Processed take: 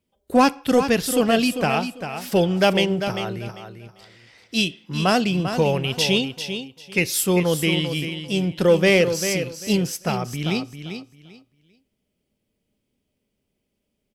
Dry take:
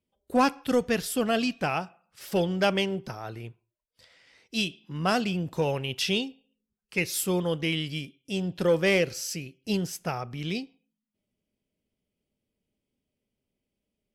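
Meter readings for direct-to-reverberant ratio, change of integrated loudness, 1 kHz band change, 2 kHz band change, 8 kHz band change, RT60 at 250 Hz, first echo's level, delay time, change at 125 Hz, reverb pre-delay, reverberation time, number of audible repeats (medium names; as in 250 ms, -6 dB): no reverb, +7.0 dB, +6.5 dB, +6.5 dB, +7.5 dB, no reverb, -9.0 dB, 395 ms, +7.5 dB, no reverb, no reverb, 2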